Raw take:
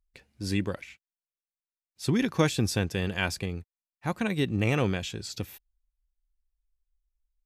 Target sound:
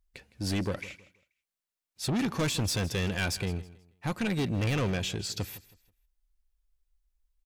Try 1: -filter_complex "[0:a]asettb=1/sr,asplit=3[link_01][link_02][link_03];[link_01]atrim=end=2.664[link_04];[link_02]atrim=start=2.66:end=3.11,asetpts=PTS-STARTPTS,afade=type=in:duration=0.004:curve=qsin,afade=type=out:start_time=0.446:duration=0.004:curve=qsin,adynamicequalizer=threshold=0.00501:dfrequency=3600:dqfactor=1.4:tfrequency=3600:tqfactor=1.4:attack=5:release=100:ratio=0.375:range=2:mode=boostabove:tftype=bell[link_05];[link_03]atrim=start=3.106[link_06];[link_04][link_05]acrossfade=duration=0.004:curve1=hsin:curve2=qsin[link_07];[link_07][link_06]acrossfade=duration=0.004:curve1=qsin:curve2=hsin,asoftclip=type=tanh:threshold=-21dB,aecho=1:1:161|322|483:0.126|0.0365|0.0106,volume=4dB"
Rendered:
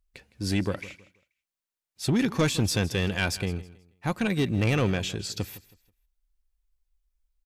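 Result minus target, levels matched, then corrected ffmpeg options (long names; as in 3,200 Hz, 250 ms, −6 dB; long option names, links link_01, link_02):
soft clipping: distortion −7 dB
-filter_complex "[0:a]asettb=1/sr,asplit=3[link_01][link_02][link_03];[link_01]atrim=end=2.664[link_04];[link_02]atrim=start=2.66:end=3.11,asetpts=PTS-STARTPTS,afade=type=in:duration=0.004:curve=qsin,afade=type=out:start_time=0.446:duration=0.004:curve=qsin,adynamicequalizer=threshold=0.00501:dfrequency=3600:dqfactor=1.4:tfrequency=3600:tqfactor=1.4:attack=5:release=100:ratio=0.375:range=2:mode=boostabove:tftype=bell[link_05];[link_03]atrim=start=3.106[link_06];[link_04][link_05]acrossfade=duration=0.004:curve1=hsin:curve2=qsin[link_07];[link_07][link_06]acrossfade=duration=0.004:curve1=qsin:curve2=hsin,asoftclip=type=tanh:threshold=-29dB,aecho=1:1:161|322|483:0.126|0.0365|0.0106,volume=4dB"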